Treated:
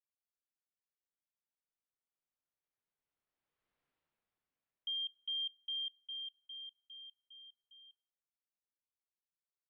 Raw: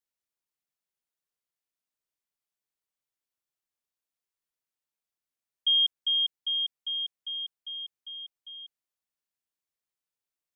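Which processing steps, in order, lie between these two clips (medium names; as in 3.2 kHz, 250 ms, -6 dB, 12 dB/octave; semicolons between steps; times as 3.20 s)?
Doppler pass-by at 4.14 s, 36 m/s, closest 12 m; peak limiter -39 dBFS, peak gain reduction 9.5 dB; distance through air 470 m; on a send at -19 dB: reverberation RT60 0.65 s, pre-delay 7 ms; on the sum: speed mistake 44.1 kHz file played as 48 kHz; trim +13 dB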